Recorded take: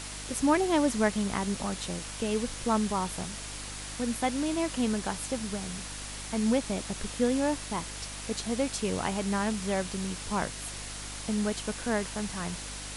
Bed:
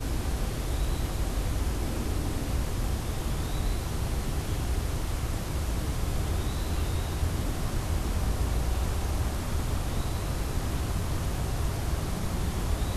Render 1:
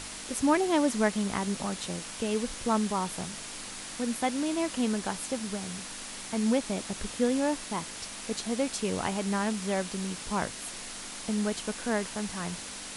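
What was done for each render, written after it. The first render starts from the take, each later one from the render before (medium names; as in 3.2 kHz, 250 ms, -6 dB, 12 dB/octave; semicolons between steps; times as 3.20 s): de-hum 50 Hz, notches 3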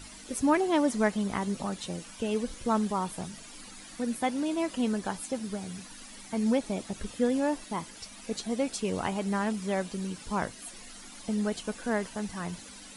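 noise reduction 12 dB, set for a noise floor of -41 dBFS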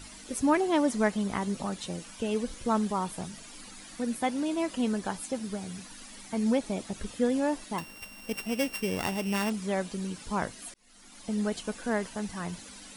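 7.78–9.50 s: sorted samples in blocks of 16 samples; 10.74–11.40 s: fade in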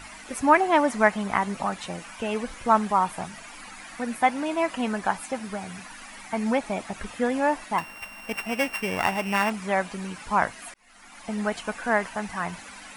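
high-order bell 1.3 kHz +10.5 dB 2.3 oct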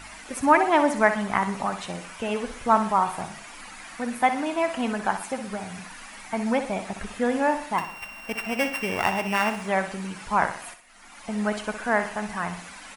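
feedback delay 62 ms, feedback 44%, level -10 dB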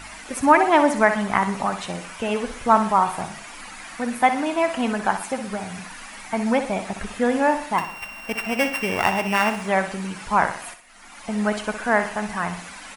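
trim +3.5 dB; peak limiter -3 dBFS, peak gain reduction 2 dB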